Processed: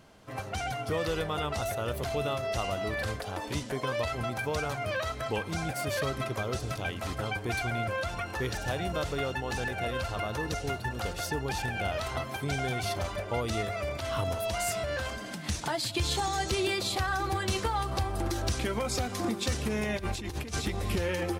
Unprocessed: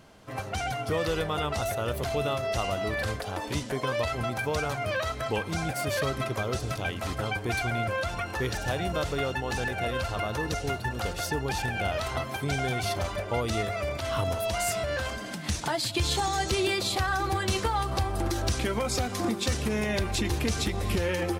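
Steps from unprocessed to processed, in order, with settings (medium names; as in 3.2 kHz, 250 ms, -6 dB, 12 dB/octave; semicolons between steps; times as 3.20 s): 19.97–20.64 s: compressor with a negative ratio -31 dBFS, ratio -0.5; trim -2.5 dB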